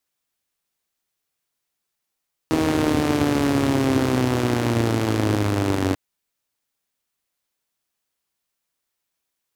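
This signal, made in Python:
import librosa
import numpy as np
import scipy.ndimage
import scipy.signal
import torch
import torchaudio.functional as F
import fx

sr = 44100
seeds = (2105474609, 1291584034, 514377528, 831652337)

y = fx.engine_four_rev(sr, seeds[0], length_s=3.44, rpm=4800, resonances_hz=(110.0, 270.0), end_rpm=2800)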